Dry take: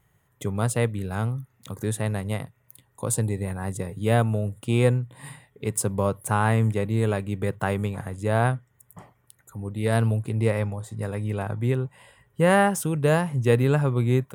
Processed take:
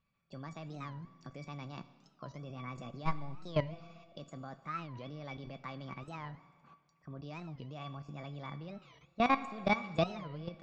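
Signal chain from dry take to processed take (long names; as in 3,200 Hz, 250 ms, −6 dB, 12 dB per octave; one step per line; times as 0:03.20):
de-essing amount 60%
low-shelf EQ 100 Hz −2.5 dB
output level in coarse steps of 19 dB
tuned comb filter 840 Hz, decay 0.15 s, harmonics all, mix 90%
four-comb reverb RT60 2.2 s, combs from 33 ms, DRR 13.5 dB
wrong playback speed 33 rpm record played at 45 rpm
downsampling to 16,000 Hz
wow of a warped record 45 rpm, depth 250 cents
level +10.5 dB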